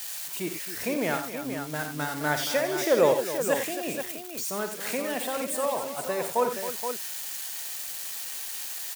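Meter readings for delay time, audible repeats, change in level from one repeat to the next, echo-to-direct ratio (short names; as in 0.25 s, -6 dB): 54 ms, 4, no steady repeat, -3.5 dB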